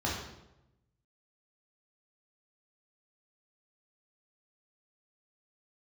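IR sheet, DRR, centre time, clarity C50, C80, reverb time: -4.0 dB, 53 ms, 2.5 dB, 6.0 dB, 0.90 s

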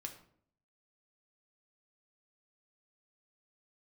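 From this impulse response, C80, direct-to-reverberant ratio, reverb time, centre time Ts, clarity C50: 13.5 dB, 3.5 dB, 0.60 s, 14 ms, 10.0 dB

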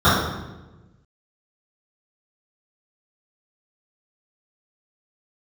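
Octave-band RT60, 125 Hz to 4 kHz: 1.6 s, 1.5 s, 1.2 s, 0.95 s, 0.90 s, 0.80 s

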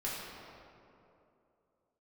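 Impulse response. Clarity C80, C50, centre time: 0.5 dB, -1.5 dB, 141 ms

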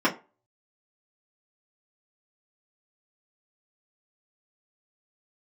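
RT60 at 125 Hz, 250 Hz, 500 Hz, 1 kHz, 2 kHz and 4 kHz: 0.25 s, 0.25 s, 0.30 s, 0.30 s, 0.25 s, 0.20 s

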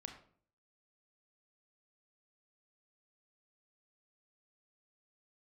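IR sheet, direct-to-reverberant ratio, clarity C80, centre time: 4.0 dB, 11.5 dB, 18 ms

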